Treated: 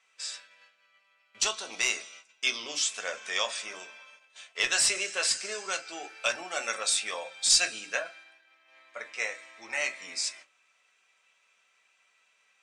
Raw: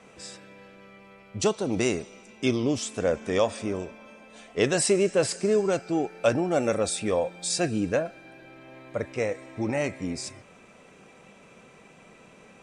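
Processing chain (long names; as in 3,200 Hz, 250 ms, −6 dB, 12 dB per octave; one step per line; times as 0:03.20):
noise gate −47 dBFS, range −15 dB
high-pass filter 1,400 Hz 12 dB per octave
high-shelf EQ 2,400 Hz +9.5 dB
gain into a clipping stage and back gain 15.5 dB
high-frequency loss of the air 61 metres
convolution reverb RT60 0.25 s, pre-delay 4 ms, DRR 5.5 dB
0:07.49–0:09.73: multiband upward and downward expander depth 40%
level +1 dB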